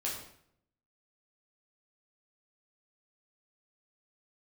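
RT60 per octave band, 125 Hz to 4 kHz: 0.90 s, 0.80 s, 0.70 s, 0.65 s, 0.60 s, 0.55 s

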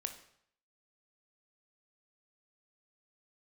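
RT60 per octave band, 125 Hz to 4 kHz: 0.70 s, 0.60 s, 0.65 s, 0.65 s, 0.65 s, 0.60 s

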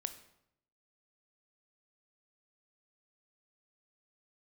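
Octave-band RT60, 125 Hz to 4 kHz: 0.95 s, 0.85 s, 0.80 s, 0.75 s, 0.65 s, 0.60 s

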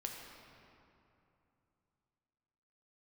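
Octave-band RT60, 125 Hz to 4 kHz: 3.6 s, 3.3 s, 2.9 s, 2.9 s, 2.3 s, 1.7 s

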